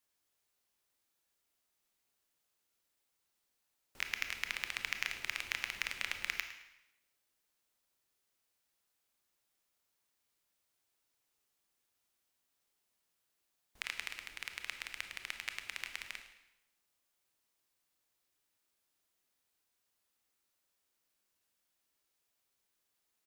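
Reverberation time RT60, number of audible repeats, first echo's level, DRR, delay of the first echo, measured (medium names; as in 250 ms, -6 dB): 0.90 s, 2, -15.5 dB, 6.0 dB, 108 ms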